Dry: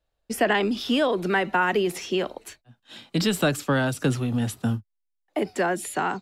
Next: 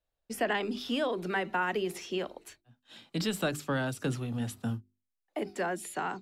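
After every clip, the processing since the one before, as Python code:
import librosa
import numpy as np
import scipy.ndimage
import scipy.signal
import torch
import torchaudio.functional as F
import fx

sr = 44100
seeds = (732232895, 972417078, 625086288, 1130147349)

y = fx.hum_notches(x, sr, base_hz=50, count=8)
y = y * 10.0 ** (-8.0 / 20.0)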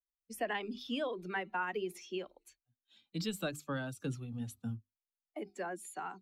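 y = fx.bin_expand(x, sr, power=1.5)
y = y * 10.0 ** (-4.0 / 20.0)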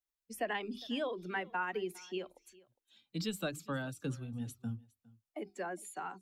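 y = x + 10.0 ** (-23.0 / 20.0) * np.pad(x, (int(408 * sr / 1000.0), 0))[:len(x)]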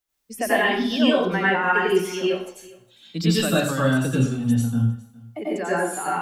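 y = fx.rev_plate(x, sr, seeds[0], rt60_s=0.56, hf_ratio=0.85, predelay_ms=80, drr_db=-7.5)
y = y * 10.0 ** (9.0 / 20.0)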